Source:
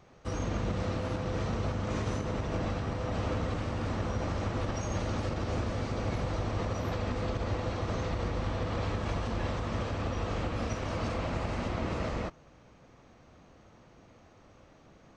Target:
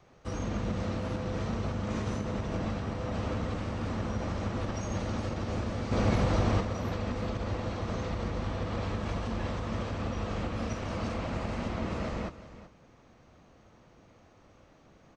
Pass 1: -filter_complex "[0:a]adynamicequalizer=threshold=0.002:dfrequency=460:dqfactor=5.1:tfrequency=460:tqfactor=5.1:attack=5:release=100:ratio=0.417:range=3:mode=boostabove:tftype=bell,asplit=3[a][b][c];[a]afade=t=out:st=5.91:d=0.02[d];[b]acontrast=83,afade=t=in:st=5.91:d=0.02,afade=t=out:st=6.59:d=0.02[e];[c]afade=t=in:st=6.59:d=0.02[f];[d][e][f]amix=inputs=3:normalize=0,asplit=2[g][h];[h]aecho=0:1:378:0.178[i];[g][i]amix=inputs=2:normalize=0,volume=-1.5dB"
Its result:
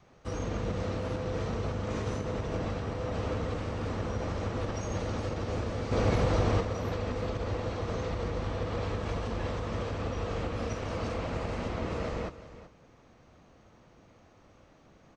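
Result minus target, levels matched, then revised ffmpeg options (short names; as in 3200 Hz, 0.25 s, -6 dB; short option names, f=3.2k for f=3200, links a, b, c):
500 Hz band +2.5 dB
-filter_complex "[0:a]adynamicequalizer=threshold=0.002:dfrequency=210:dqfactor=5.1:tfrequency=210:tqfactor=5.1:attack=5:release=100:ratio=0.417:range=3:mode=boostabove:tftype=bell,asplit=3[a][b][c];[a]afade=t=out:st=5.91:d=0.02[d];[b]acontrast=83,afade=t=in:st=5.91:d=0.02,afade=t=out:st=6.59:d=0.02[e];[c]afade=t=in:st=6.59:d=0.02[f];[d][e][f]amix=inputs=3:normalize=0,asplit=2[g][h];[h]aecho=0:1:378:0.178[i];[g][i]amix=inputs=2:normalize=0,volume=-1.5dB"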